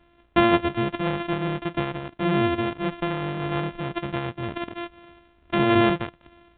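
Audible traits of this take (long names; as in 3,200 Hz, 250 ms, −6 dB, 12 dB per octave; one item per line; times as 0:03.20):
a buzz of ramps at a fixed pitch in blocks of 128 samples
A-law companding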